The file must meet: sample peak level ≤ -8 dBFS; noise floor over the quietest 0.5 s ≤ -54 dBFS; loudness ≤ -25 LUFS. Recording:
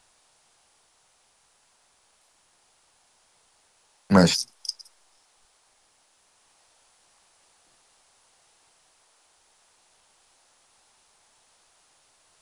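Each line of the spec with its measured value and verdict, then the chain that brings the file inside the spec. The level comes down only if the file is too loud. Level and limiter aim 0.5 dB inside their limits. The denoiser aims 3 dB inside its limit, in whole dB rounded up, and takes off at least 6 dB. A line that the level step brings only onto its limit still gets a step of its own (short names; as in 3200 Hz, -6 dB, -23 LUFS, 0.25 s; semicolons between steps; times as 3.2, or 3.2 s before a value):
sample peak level -3.0 dBFS: fail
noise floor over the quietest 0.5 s -65 dBFS: OK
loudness -22.0 LUFS: fail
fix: gain -3.5 dB; limiter -8.5 dBFS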